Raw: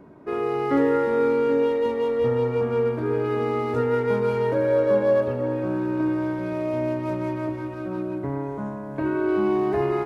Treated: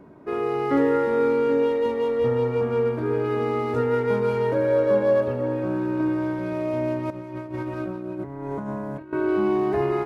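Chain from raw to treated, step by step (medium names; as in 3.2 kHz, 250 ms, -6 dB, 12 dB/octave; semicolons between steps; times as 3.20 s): 7.10–9.13 s: compressor with a negative ratio -31 dBFS, ratio -0.5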